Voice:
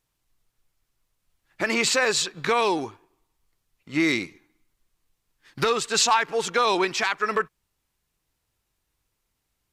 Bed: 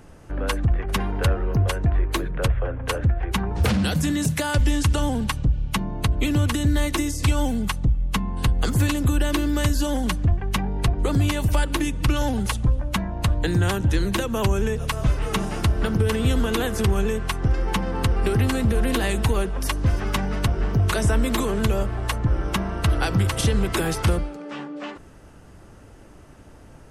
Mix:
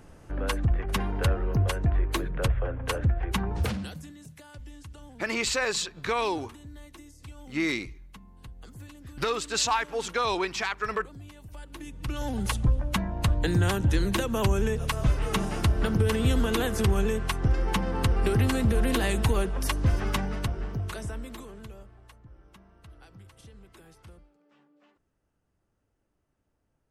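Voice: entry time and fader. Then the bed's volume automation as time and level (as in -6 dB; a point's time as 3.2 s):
3.60 s, -5.5 dB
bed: 3.55 s -4 dB
4.15 s -25 dB
11.48 s -25 dB
12.52 s -3 dB
20.08 s -3 dB
22.27 s -30 dB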